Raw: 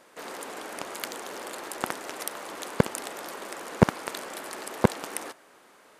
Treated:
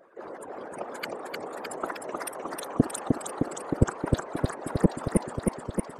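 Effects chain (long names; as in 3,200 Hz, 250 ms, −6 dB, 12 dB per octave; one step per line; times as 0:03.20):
expanding power law on the bin magnitudes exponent 2.5
reverb reduction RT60 0.97 s
random phases in short frames
feedback echo with a swinging delay time 310 ms, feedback 75%, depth 122 cents, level −3 dB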